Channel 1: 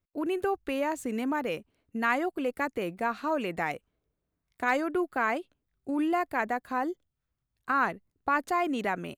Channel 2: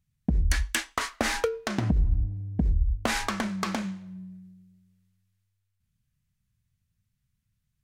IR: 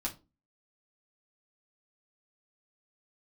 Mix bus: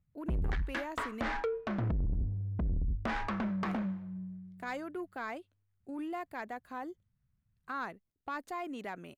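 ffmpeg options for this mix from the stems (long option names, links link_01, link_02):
-filter_complex "[0:a]volume=-10.5dB,asplit=3[link_01][link_02][link_03];[link_01]atrim=end=1.21,asetpts=PTS-STARTPTS,afade=type=out:start_time=1.206:duration=0.004:curve=hsin[link_04];[link_02]atrim=start=1.21:end=3.63,asetpts=PTS-STARTPTS,volume=0[link_05];[link_03]atrim=start=3.63,asetpts=PTS-STARTPTS,afade=type=in:duration=0.004:curve=hsin[link_06];[link_04][link_05][link_06]concat=n=3:v=0:a=1[link_07];[1:a]lowpass=1500,volume=0dB[link_08];[link_07][link_08]amix=inputs=2:normalize=0,asoftclip=type=tanh:threshold=-28.5dB"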